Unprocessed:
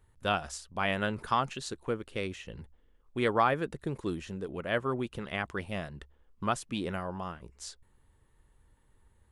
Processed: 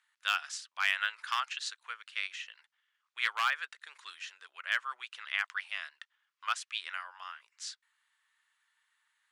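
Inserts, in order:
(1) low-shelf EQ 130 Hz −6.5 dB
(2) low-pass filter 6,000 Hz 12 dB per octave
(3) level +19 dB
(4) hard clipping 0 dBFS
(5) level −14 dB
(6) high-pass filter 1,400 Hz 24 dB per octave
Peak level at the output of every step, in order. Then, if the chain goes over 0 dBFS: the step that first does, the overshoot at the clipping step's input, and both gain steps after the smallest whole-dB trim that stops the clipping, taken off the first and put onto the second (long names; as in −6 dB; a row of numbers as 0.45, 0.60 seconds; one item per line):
−12.0, −12.0, +7.0, 0.0, −14.0, −12.5 dBFS
step 3, 7.0 dB
step 3 +12 dB, step 5 −7 dB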